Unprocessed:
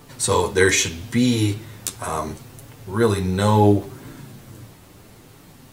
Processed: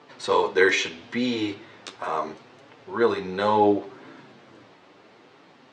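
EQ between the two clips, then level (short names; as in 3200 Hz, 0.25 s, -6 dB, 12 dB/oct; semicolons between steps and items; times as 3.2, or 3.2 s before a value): BPF 360–4800 Hz; air absorption 120 m; 0.0 dB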